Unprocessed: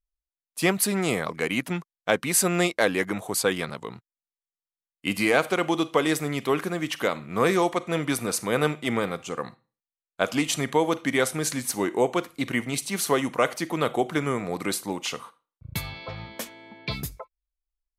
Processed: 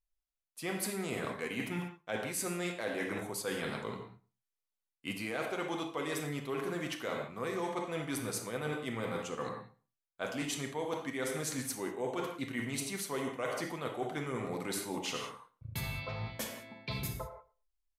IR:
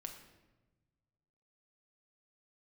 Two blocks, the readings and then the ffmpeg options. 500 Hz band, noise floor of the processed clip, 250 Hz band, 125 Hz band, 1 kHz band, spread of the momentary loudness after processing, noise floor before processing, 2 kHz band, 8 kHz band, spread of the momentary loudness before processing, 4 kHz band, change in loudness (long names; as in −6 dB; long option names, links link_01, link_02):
−11.5 dB, below −85 dBFS, −11.5 dB, −9.0 dB, −11.5 dB, 6 LU, below −85 dBFS, −11.5 dB, −11.5 dB, 13 LU, −10.5 dB, −11.5 dB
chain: -filter_complex "[0:a]asplit=2[link_01][link_02];[link_02]adelay=113,lowpass=frequency=2400:poles=1,volume=-20dB,asplit=2[link_03][link_04];[link_04]adelay=113,lowpass=frequency=2400:poles=1,volume=0.15[link_05];[link_01][link_03][link_05]amix=inputs=3:normalize=0[link_06];[1:a]atrim=start_sample=2205,afade=type=out:start_time=0.19:duration=0.01,atrim=end_sample=8820,asetrate=30870,aresample=44100[link_07];[link_06][link_07]afir=irnorm=-1:irlink=0,areverse,acompressor=threshold=-34dB:ratio=6,areverse"